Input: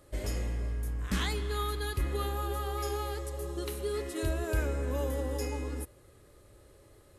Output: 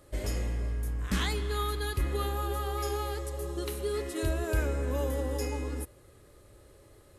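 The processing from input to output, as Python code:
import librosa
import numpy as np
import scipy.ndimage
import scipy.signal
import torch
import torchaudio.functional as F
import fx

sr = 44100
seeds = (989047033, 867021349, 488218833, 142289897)

y = x * librosa.db_to_amplitude(1.5)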